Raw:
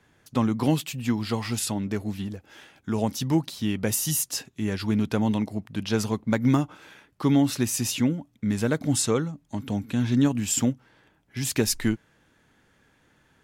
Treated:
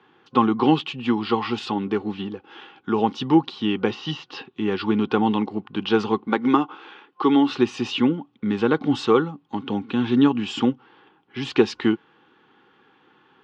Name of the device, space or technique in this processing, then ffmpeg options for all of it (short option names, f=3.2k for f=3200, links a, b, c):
kitchen radio: -filter_complex "[0:a]asettb=1/sr,asplit=3[a][b][c];[a]atrim=end=6.274[d];[b]atrim=start=6.27:end=7.51,asetpts=PTS-STARTPTS,afade=t=in:d=0.004:c=qsin,afade=t=out:st=1.236:d=0.004:c=qsin,highpass=240[e];[c]atrim=start=7.506[f];[d][e]acrossfade=d=0.004:c1=hsin:c2=qsin[g];[g][f]acrossfade=d=0.004:c1=qsin:c2=hsin,highpass=220,equalizer=f=370:t=q:w=4:g=7,equalizer=f=820:t=q:w=4:g=8,equalizer=f=1.3k:t=q:w=4:g=-8,equalizer=f=2.1k:t=q:w=4:g=-4,equalizer=f=3k:t=q:w=4:g=5,lowpass=f=3.7k:w=0.5412,lowpass=f=3.7k:w=1.3066,asettb=1/sr,asplit=3[h][i][j];[h]atrim=end=3.914[k];[i]atrim=start=3.91:end=4.52,asetpts=PTS-STARTPTS,afade=t=in:d=0.004:c=qsin,afade=t=out:st=0.606:d=0.004:c=qsin,lowpass=f=4.8k:w=0.5412,lowpass=f=4.8k:w=1.3066[l];[j]atrim=start=4.516[m];[k][l]acrossfade=d=0.004:c1=hsin:c2=qsin[n];[n][m]acrossfade=d=0.004:c1=qsin:c2=hsin,superequalizer=8b=0.316:10b=3.16,volume=5dB"